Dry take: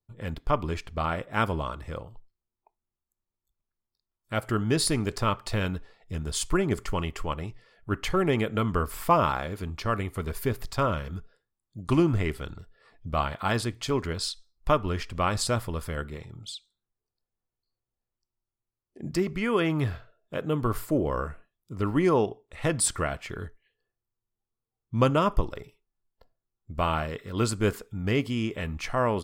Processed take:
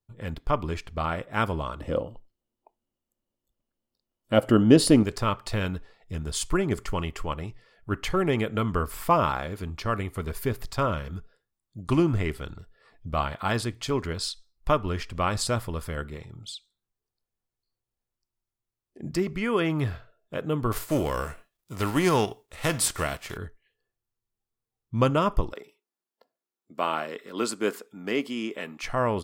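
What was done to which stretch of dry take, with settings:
1.8–5.03 small resonant body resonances 270/520/2900 Hz, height 13 dB, ringing for 20 ms
20.71–23.36 spectral whitening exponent 0.6
25.53–28.83 HPF 230 Hz 24 dB/oct

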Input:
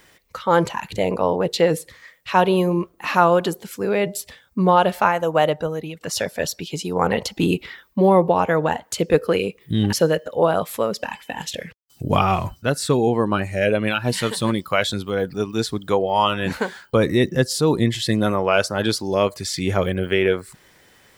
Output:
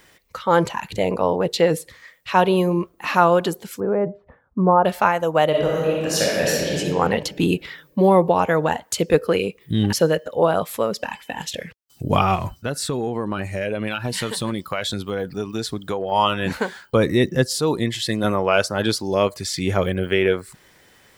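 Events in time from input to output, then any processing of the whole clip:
3.8–4.85 LPF 1300 Hz 24 dB/oct
5.49–6.78 reverb throw, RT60 1.8 s, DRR -5 dB
7.64–9.15 bell 12000 Hz +3.5 dB 2.4 oct
12.35–16.12 compressor, threshold -20 dBFS
17.59–18.24 low shelf 330 Hz -6 dB

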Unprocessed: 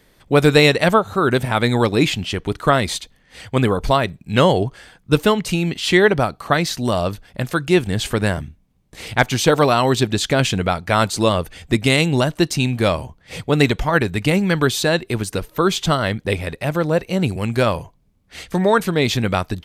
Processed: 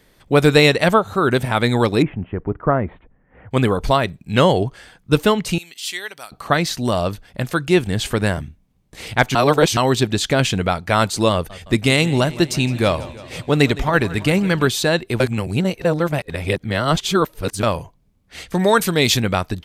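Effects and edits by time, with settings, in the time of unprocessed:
2.02–3.51 Gaussian blur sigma 5.8 samples
5.58–6.32 differentiator
9.35–9.77 reverse
11.33–14.68 warbling echo 0.166 s, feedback 69%, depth 92 cents, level -18.5 dB
15.2–17.63 reverse
18.59–19.2 high shelf 3500 Hz +10.5 dB

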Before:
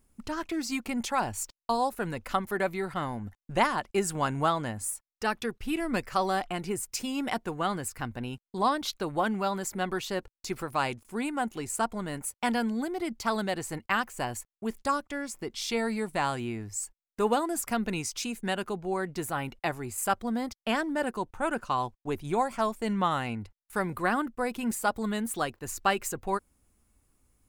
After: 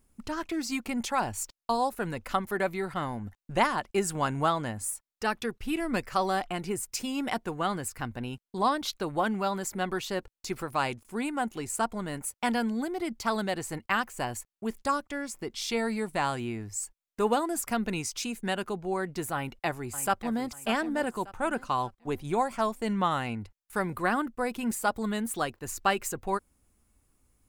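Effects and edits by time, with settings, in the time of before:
19.34–20.51 echo throw 0.59 s, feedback 35%, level -12 dB

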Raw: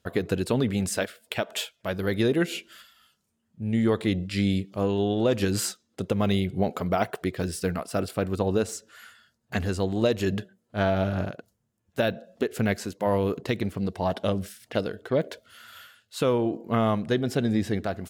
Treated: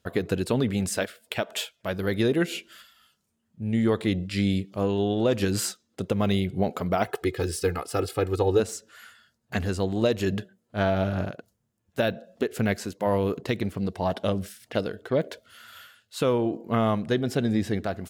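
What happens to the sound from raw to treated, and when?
7.06–8.6 comb 2.4 ms, depth 80%

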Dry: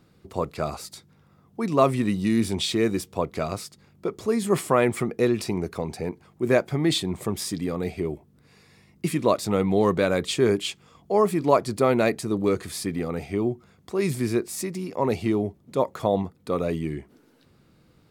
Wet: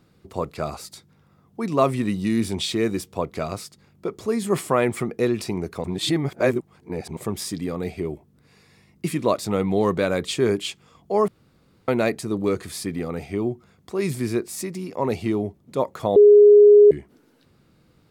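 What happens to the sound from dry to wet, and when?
5.84–7.17 reverse
11.28–11.88 room tone
16.16–16.91 bleep 414 Hz -7 dBFS

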